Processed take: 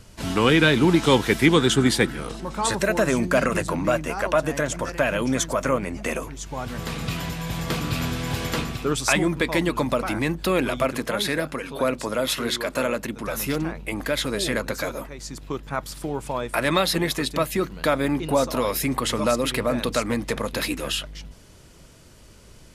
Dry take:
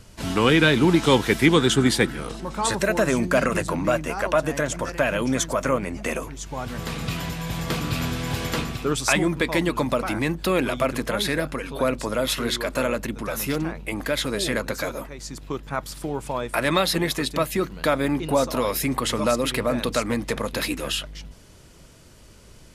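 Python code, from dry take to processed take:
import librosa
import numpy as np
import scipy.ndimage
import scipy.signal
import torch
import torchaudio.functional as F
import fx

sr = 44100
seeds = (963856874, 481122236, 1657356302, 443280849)

y = fx.highpass(x, sr, hz=120.0, slope=6, at=(10.87, 13.24))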